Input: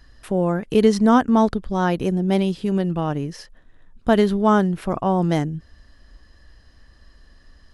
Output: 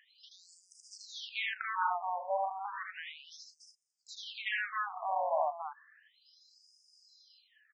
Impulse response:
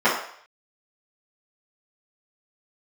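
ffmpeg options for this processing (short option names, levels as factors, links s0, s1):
-filter_complex "[0:a]lowshelf=f=290:g=7.5,acrossover=split=300|3200[s0][s1][s2];[s1]tremolo=f=0.71:d=0.86[s3];[s2]acompressor=threshold=0.00224:ratio=6[s4];[s0][s3][s4]amix=inputs=3:normalize=0,asoftclip=type=hard:threshold=0.2,asplit=2[s5][s6];[s6]aecho=0:1:78.72|288.6:0.794|0.562[s7];[s5][s7]amix=inputs=2:normalize=0,afftfilt=real='re*between(b*sr/1024,770*pow(6900/770,0.5+0.5*sin(2*PI*0.33*pts/sr))/1.41,770*pow(6900/770,0.5+0.5*sin(2*PI*0.33*pts/sr))*1.41)':imag='im*between(b*sr/1024,770*pow(6900/770,0.5+0.5*sin(2*PI*0.33*pts/sr))/1.41,770*pow(6900/770,0.5+0.5*sin(2*PI*0.33*pts/sr))*1.41)':win_size=1024:overlap=0.75"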